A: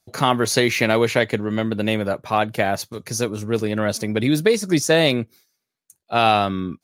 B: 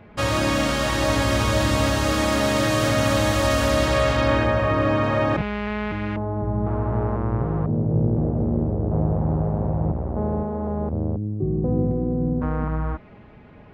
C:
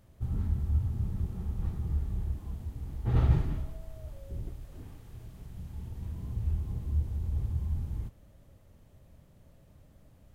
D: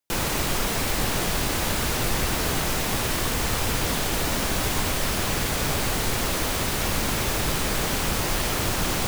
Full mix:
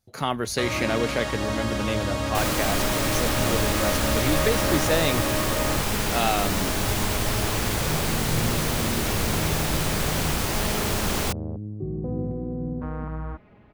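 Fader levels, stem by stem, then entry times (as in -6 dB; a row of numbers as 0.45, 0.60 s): -8.0, -7.0, -18.5, -1.0 dB; 0.00, 0.40, 0.00, 2.25 s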